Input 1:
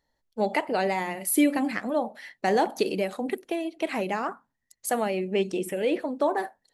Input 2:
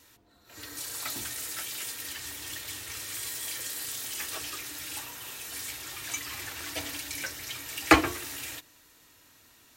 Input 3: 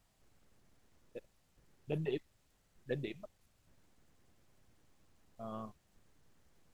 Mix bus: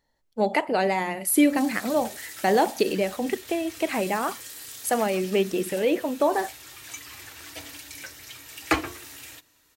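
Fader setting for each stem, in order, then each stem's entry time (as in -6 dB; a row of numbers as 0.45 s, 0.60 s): +2.5 dB, -4.5 dB, -16.5 dB; 0.00 s, 0.80 s, 0.00 s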